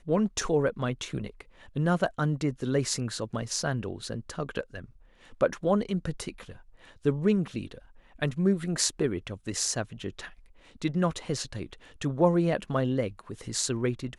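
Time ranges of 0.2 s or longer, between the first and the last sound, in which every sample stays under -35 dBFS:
1.41–1.76
4.84–5.41
6.52–7.05
7.78–8.22
10.27–10.82
11.73–12.01

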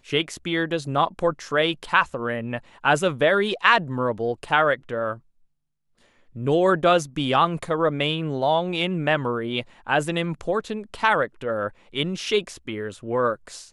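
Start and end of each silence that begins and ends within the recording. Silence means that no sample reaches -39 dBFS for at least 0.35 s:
5.17–6.35

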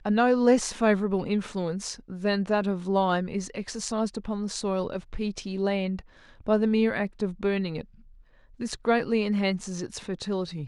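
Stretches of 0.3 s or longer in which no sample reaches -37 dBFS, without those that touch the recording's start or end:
6–6.41
7.81–8.6

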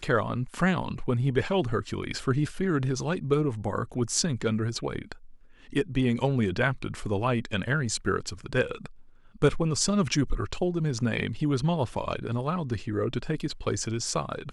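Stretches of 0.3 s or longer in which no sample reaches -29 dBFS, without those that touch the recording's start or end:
5.12–5.76
8.86–9.42

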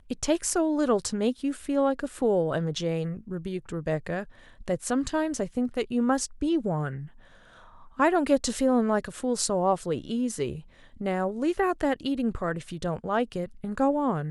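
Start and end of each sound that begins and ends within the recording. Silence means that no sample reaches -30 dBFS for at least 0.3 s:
4.68–6.99
7.99–10.55

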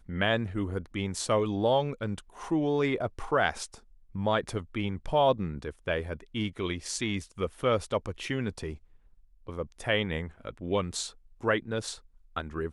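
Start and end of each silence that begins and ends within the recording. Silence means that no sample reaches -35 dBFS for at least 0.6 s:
8.74–9.48

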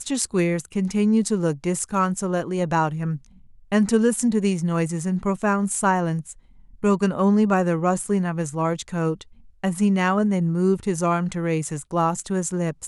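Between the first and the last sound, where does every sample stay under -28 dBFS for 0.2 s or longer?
3.16–3.72
6.32–6.84
9.22–9.64

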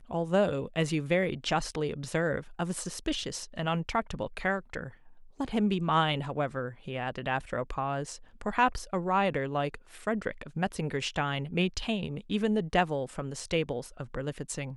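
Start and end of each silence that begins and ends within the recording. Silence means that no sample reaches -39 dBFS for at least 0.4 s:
4.89–5.4

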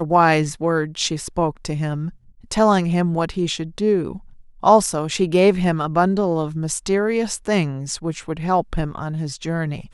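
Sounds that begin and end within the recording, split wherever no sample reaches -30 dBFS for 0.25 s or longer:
2.51–4.18

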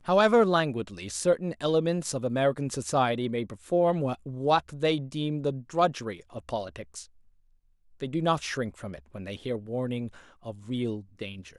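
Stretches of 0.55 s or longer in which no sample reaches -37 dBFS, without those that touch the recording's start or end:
7.03–8

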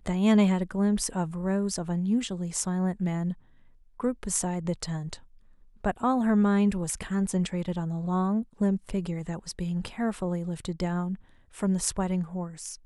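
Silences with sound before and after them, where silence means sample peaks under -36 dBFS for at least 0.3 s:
3.33–4
5.15–5.85
11.15–11.58

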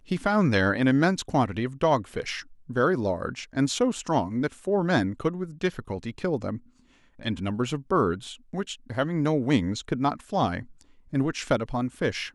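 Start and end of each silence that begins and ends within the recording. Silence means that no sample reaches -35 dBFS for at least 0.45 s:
6.57–7.19

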